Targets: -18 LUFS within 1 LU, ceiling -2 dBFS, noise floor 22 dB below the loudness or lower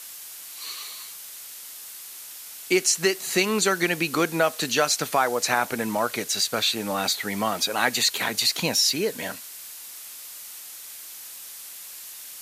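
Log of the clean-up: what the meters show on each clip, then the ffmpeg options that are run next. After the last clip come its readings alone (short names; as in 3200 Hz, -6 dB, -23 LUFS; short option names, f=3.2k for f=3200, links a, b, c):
noise floor -41 dBFS; noise floor target -46 dBFS; loudness -23.5 LUFS; peak -5.5 dBFS; loudness target -18.0 LUFS
-> -af "afftdn=nr=6:nf=-41"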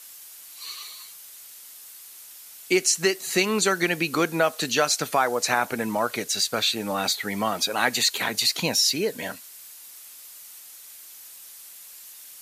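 noise floor -45 dBFS; noise floor target -46 dBFS
-> -af "afftdn=nr=6:nf=-45"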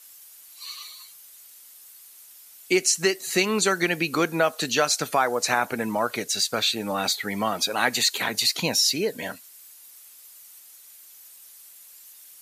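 noise floor -49 dBFS; loudness -23.0 LUFS; peak -5.5 dBFS; loudness target -18.0 LUFS
-> -af "volume=5dB,alimiter=limit=-2dB:level=0:latency=1"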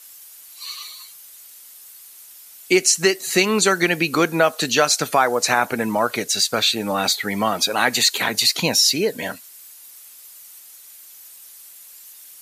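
loudness -18.0 LUFS; peak -2.0 dBFS; noise floor -44 dBFS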